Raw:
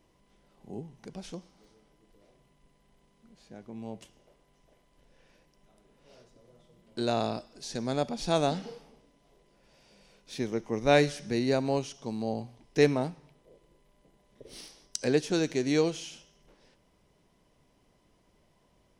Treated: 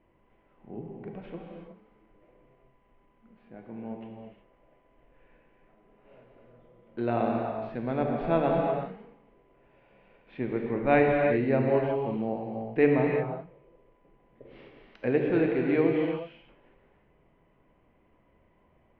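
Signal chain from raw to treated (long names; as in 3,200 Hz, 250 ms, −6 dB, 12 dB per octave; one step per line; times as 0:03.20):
Butterworth low-pass 2,600 Hz 36 dB per octave
mains-hum notches 50/100/150/200 Hz
reverb whose tail is shaped and stops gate 390 ms flat, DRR 0 dB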